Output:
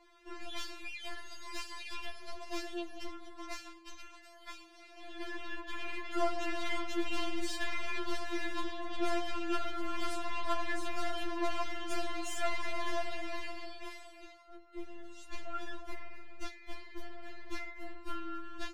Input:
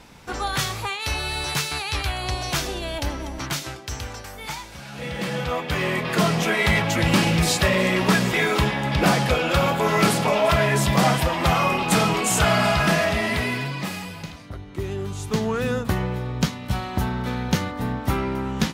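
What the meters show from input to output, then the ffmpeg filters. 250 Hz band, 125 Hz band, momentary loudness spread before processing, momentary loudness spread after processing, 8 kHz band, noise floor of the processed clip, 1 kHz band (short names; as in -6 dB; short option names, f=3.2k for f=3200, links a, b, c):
-18.0 dB, under -30 dB, 14 LU, 15 LU, -21.0 dB, -55 dBFS, -16.0 dB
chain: -af "aemphasis=mode=reproduction:type=50fm,aeval=exprs='(tanh(11.2*val(0)+0.65)-tanh(0.65))/11.2':c=same,afftfilt=real='re*4*eq(mod(b,16),0)':imag='im*4*eq(mod(b,16),0)':win_size=2048:overlap=0.75,volume=-7dB"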